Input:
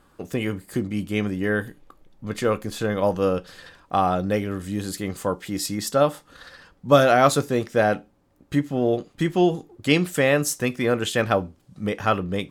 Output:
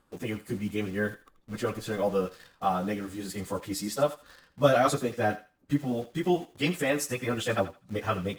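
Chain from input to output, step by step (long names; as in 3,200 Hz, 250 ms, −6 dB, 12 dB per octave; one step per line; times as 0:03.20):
time stretch by phase vocoder 0.67×
in parallel at −3.5 dB: bit reduction 7 bits
on the sum: feedback echo with a high-pass in the loop 81 ms, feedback 23%, high-pass 810 Hz, level −13 dB
level −7.5 dB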